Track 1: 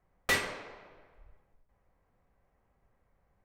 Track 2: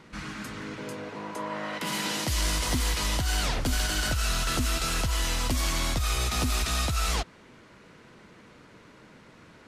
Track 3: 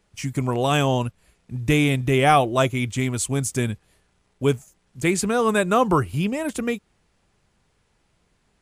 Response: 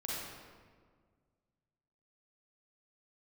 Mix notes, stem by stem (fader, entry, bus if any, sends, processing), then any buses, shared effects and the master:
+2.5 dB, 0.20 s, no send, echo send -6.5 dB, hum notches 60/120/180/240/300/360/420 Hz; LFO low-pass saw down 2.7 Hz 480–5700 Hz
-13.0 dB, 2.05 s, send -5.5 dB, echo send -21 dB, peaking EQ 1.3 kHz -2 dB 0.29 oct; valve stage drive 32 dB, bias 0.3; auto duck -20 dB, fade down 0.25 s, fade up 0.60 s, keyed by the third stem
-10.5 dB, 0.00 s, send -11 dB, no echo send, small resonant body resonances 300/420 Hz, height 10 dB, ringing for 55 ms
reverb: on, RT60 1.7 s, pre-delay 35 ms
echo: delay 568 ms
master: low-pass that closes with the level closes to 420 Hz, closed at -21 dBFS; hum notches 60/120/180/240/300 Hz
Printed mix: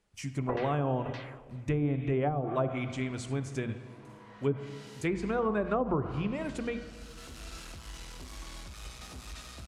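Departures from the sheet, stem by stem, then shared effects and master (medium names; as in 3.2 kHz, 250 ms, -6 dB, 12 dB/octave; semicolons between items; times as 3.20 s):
stem 1 +2.5 dB -> -5.0 dB; stem 2: entry 2.05 s -> 2.70 s; stem 3: missing small resonant body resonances 300/420 Hz, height 10 dB, ringing for 55 ms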